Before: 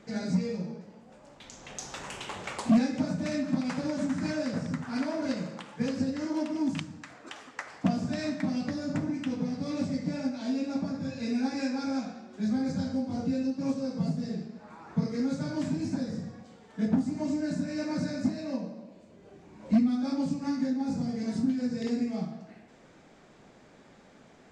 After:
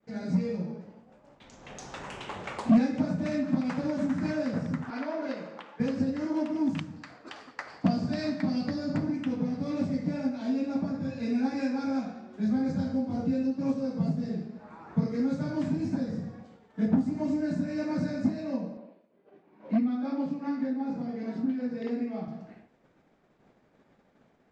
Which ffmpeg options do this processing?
-filter_complex "[0:a]asettb=1/sr,asplit=3[a][b][c];[a]atrim=end=4.904[d];[b]atrim=start=4.9:end=5.8,asetpts=PTS-STARTPTS,afade=t=in:d=0.004:c=qsin,afade=t=out:st=0.896:d=0.004:c=qsin,highpass=360,lowpass=5k[e];[c]atrim=start=5.796[f];[d][e]acrossfade=d=0.004:c1=hsin:c2=qsin[g];[g][f]acrossfade=d=0.004:c1=qsin:c2=hsin,asettb=1/sr,asplit=3[h][i][j];[h]atrim=end=6.964[k];[i]atrim=start=6.96:end=9.16,asetpts=PTS-STARTPTS,afade=t=in:d=0.004:c=qsin,afade=t=out:st=2.196:d=0.004:c=qsin,equalizer=f=4.6k:w=4.6:g=11.5[l];[j]atrim=start=9.156[m];[k][l]acrossfade=d=0.004:c1=hsin:c2=qsin[n];[n][m]acrossfade=d=0.004:c1=qsin:c2=hsin,asettb=1/sr,asplit=3[o][p][q];[o]atrim=end=18.774[r];[p]atrim=start=18.77:end=22.28,asetpts=PTS-STARTPTS,afade=t=in:d=0.004:c=qsin,afade=t=out:st=3.506:d=0.004:c=qsin,highpass=260,lowpass=3.6k[s];[q]atrim=start=22.276[t];[r][s]acrossfade=d=0.004:c1=hsin:c2=qsin[u];[u][t]acrossfade=d=0.004:c1=qsin:c2=hsin,lowpass=f=2.2k:p=1,agate=range=-33dB:threshold=-48dB:ratio=3:detection=peak,dynaudnorm=f=190:g=3:m=5dB,volume=-3.5dB"

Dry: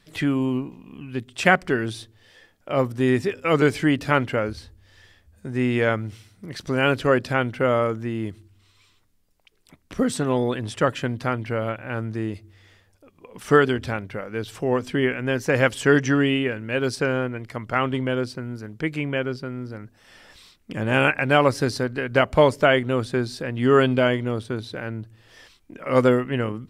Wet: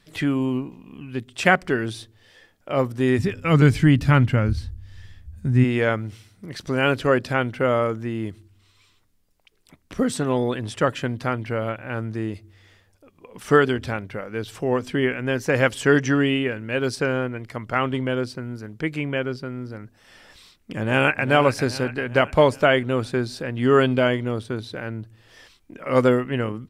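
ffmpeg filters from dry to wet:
-filter_complex "[0:a]asplit=3[a][b][c];[a]afade=t=out:st=3.18:d=0.02[d];[b]asubboost=boost=7.5:cutoff=170,afade=t=in:st=3.18:d=0.02,afade=t=out:st=5.63:d=0.02[e];[c]afade=t=in:st=5.63:d=0.02[f];[d][e][f]amix=inputs=3:normalize=0,asplit=2[g][h];[h]afade=t=in:st=20.77:d=0.01,afade=t=out:st=21.26:d=0.01,aecho=0:1:400|800|1200|1600|2000|2400:0.266073|0.14634|0.0804869|0.0442678|0.0243473|0.013391[i];[g][i]amix=inputs=2:normalize=0"

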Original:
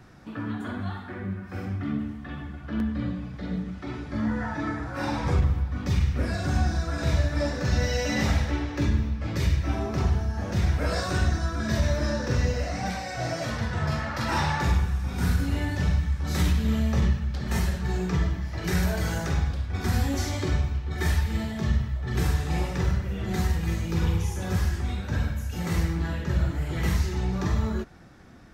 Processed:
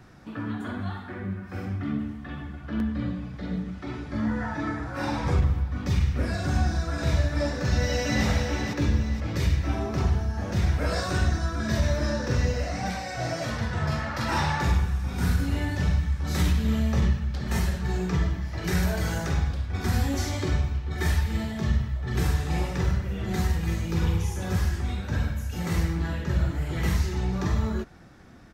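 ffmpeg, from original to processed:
-filter_complex "[0:a]asplit=2[a][b];[b]afade=t=in:st=7.42:d=0.01,afade=t=out:st=8.26:d=0.01,aecho=0:1:470|940|1410|1880|2350:0.473151|0.189261|0.0757042|0.0302817|0.0121127[c];[a][c]amix=inputs=2:normalize=0"

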